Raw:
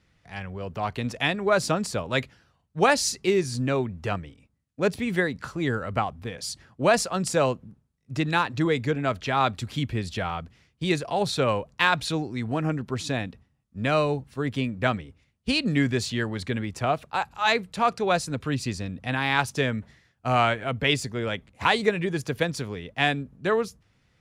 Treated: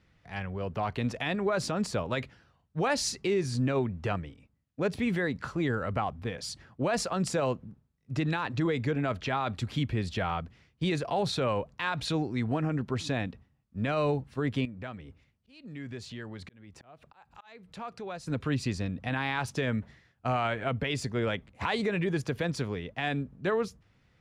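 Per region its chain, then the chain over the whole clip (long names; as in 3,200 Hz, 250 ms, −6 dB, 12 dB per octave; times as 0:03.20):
0:14.65–0:18.27: downward compressor 2.5 to 1, threshold −43 dBFS + volume swells 426 ms
whole clip: low-pass filter 3,700 Hz 6 dB per octave; brickwall limiter −20 dBFS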